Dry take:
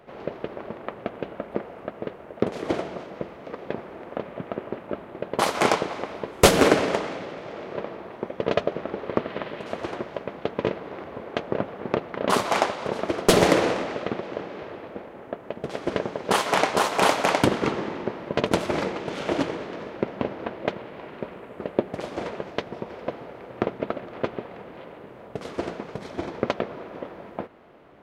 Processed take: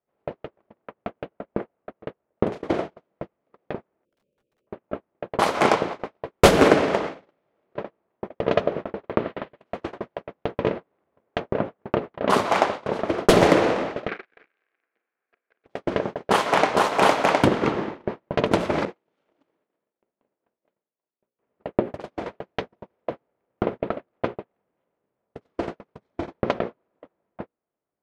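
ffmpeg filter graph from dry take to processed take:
ffmpeg -i in.wav -filter_complex "[0:a]asettb=1/sr,asplit=3[link_01][link_02][link_03];[link_01]atrim=end=4.054[link_04];[link_02]atrim=start=4.05:end=4.67,asetpts=PTS-STARTPTS,afade=type=in:duration=0.004:curve=qsin,afade=type=out:start_time=0.616:duration=0.004:curve=qsin,asuperstop=centerf=1200:order=20:qfactor=0.65,aeval=exprs='(mod(37.6*val(0)+1,2)-1)/37.6':channel_layout=same,asplit=2[link_05][link_06];[link_06]adelay=14,volume=-13dB[link_07];[link_05][link_07]amix=inputs=2:normalize=0,atrim=end_sample=27342[link_08];[link_03]atrim=start=4.666[link_09];[link_04][link_08]acrossfade=duration=0.004:curve1=hsin:curve2=qsin[link_10];[link_10][link_09]acrossfade=duration=0.004:curve1=qsin:curve2=hsin,asettb=1/sr,asplit=3[link_11][link_12][link_13];[link_11]atrim=end=14.084[link_14];[link_12]atrim=start=14.08:end=15.66,asetpts=PTS-STARTPTS,afade=type=in:duration=0.004:curve=qsin,afade=type=out:start_time=1.576:duration=0.004:curve=qsin,acrusher=bits=6:dc=4:mix=0:aa=0.000001,highpass=490,equalizer=frequency=590:width_type=q:width=4:gain=-9,equalizer=frequency=920:width_type=q:width=4:gain=-8,equalizer=frequency=1600:width_type=q:width=4:gain=9,equalizer=frequency=2300:width_type=q:width=4:gain=9,equalizer=frequency=3300:width_type=q:width=4:gain=-3,lowpass=frequency=3800:width=0.5412,lowpass=frequency=3800:width=1.3066,asplit=2[link_15][link_16];[link_16]adelay=42,volume=-12dB[link_17];[link_15][link_17]amix=inputs=2:normalize=0,atrim=end_sample=69678[link_18];[link_13]atrim=start=15.656[link_19];[link_14][link_18]acrossfade=duration=0.004:curve1=hsin:curve2=qsin[link_20];[link_20][link_19]acrossfade=duration=0.004:curve1=qsin:curve2=hsin,asettb=1/sr,asplit=3[link_21][link_22][link_23];[link_21]atrim=end=18.854[link_24];[link_22]atrim=start=18.85:end=21.39,asetpts=PTS-STARTPTS,afade=type=in:duration=0.004:curve=qsin,afade=type=out:start_time=2.536:duration=0.004:curve=qsin,agate=range=-33dB:threshold=-28dB:ratio=3:release=100:detection=peak,lowshelf=frequency=120:gain=-10,acompressor=threshold=-33dB:ratio=5:attack=3.2:release=140:knee=1:detection=peak[link_25];[link_23]atrim=start=21.386[link_26];[link_24][link_25]acrossfade=duration=0.004:curve1=hsin:curve2=qsin[link_27];[link_27][link_26]acrossfade=duration=0.004:curve1=qsin:curve2=hsin,bandreject=frequency=60:width_type=h:width=6,bandreject=frequency=120:width_type=h:width=6,bandreject=frequency=180:width_type=h:width=6,bandreject=frequency=240:width_type=h:width=6,bandreject=frequency=300:width_type=h:width=6,bandreject=frequency=360:width_type=h:width=6,bandreject=frequency=420:width_type=h:width=6,bandreject=frequency=480:width_type=h:width=6,bandreject=frequency=540:width_type=h:width=6,agate=range=-38dB:threshold=-30dB:ratio=16:detection=peak,highshelf=frequency=3700:gain=-8.5,volume=3dB" out.wav

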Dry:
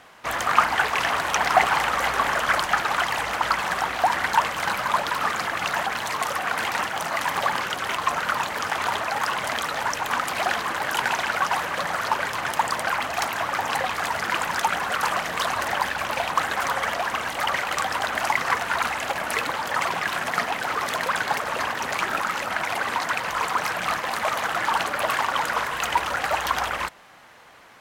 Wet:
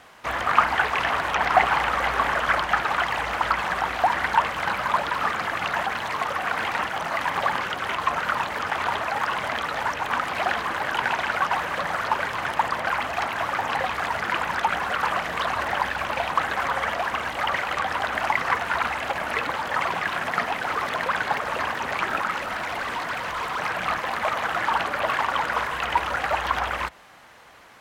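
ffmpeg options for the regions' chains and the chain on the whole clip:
ffmpeg -i in.wav -filter_complex "[0:a]asettb=1/sr,asplit=3[link_01][link_02][link_03];[link_01]atrim=end=22.384[link_04];[link_02]atrim=start=22.38:end=23.59,asetpts=PTS-STARTPTS,afade=type=in:duration=0.004:curve=qsin,afade=type=out:start_time=1.206:duration=0.004:curve=qsin,bandreject=frequency=810:width=22,asoftclip=type=hard:threshold=-25dB[link_05];[link_03]atrim=start=23.586[link_06];[link_04][link_05]acrossfade=duration=0.004:curve1=hsin:curve2=qsin[link_07];[link_07][link_06]acrossfade=duration=0.004:curve1=qsin:curve2=hsin,equalizer=frequency=60:width_type=o:width=0.77:gain=5.5,acrossover=split=3700[link_08][link_09];[link_09]acompressor=threshold=-44dB:ratio=4:attack=1:release=60[link_10];[link_08][link_10]amix=inputs=2:normalize=0" out.wav

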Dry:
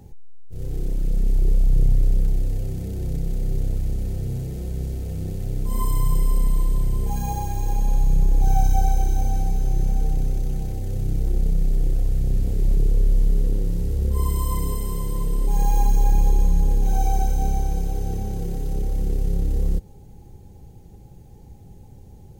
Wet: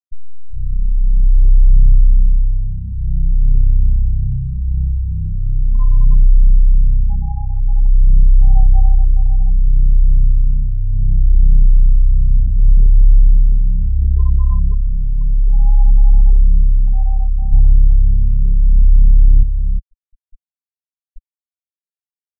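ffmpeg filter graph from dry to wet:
ffmpeg -i in.wav -filter_complex "[0:a]asettb=1/sr,asplit=3[link_01][link_02][link_03];[link_01]atrim=end=17.524[link_04];[link_02]atrim=start=17.52:end=19.43,asetpts=PTS-STARTPTS,afade=type=in:duration=0.004:curve=qsin,afade=type=out:start_time=1.906:duration=0.004:curve=qsin,lowshelf=frequency=150:gain=11,volume=8dB,asoftclip=hard,volume=-8dB[link_05];[link_03]atrim=start=19.426[link_06];[link_04][link_05]acrossfade=duration=0.004:curve1=hsin:curve2=qsin[link_07];[link_07][link_06]acrossfade=duration=0.004:curve1=qsin:curve2=hsin,afftfilt=real='re*gte(hypot(re,im),0.158)':imag='im*gte(hypot(re,im),0.158)':win_size=1024:overlap=0.75,aemphasis=mode=reproduction:type=bsi,dynaudnorm=framelen=130:gausssize=13:maxgain=11.5dB,volume=-1dB" out.wav

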